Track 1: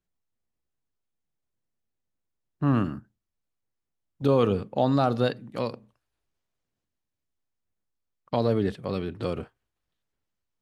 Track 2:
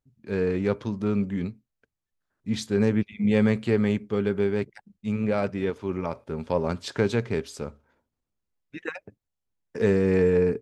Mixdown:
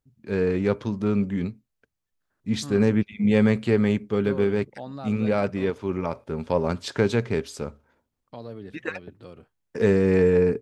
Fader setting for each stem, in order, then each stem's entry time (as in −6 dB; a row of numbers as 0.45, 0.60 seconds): −14.5, +2.0 decibels; 0.00, 0.00 seconds